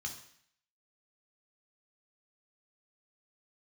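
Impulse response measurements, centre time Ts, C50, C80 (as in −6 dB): 18 ms, 8.0 dB, 11.5 dB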